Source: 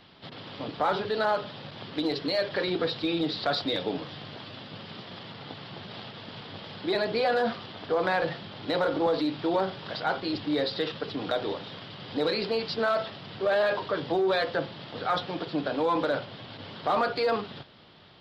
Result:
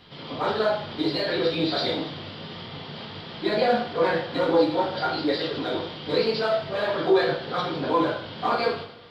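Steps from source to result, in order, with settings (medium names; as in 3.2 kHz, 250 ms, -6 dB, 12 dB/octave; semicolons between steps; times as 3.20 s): plain phase-vocoder stretch 0.5×; two-slope reverb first 0.56 s, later 2.1 s, from -24 dB, DRR -6 dB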